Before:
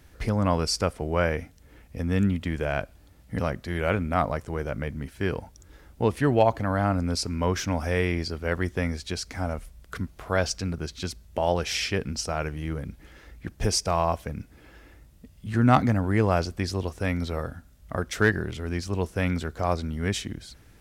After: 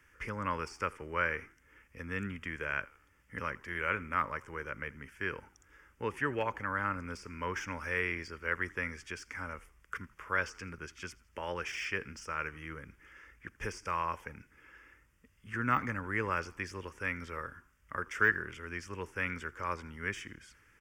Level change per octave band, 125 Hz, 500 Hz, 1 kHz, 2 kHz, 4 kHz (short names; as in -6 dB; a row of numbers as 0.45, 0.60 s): -17.0, -13.5, -7.0, -1.0, -15.0 dB